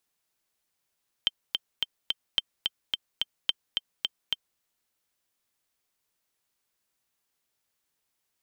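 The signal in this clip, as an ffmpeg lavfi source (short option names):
-f lavfi -i "aevalsrc='pow(10,(-9.5-3.5*gte(mod(t,4*60/216),60/216))/20)*sin(2*PI*3140*mod(t,60/216))*exp(-6.91*mod(t,60/216)/0.03)':d=3.33:s=44100"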